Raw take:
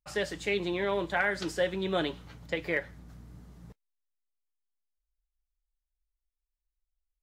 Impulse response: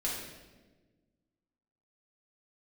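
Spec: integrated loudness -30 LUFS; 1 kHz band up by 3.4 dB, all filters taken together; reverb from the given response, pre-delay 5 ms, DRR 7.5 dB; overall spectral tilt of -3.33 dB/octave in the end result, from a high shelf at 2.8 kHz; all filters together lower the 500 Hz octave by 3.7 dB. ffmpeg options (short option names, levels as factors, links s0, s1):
-filter_complex "[0:a]equalizer=f=500:t=o:g=-6.5,equalizer=f=1000:t=o:g=8,highshelf=f=2800:g=-7.5,asplit=2[s0][s1];[1:a]atrim=start_sample=2205,adelay=5[s2];[s1][s2]afir=irnorm=-1:irlink=0,volume=0.251[s3];[s0][s3]amix=inputs=2:normalize=0,volume=1.19"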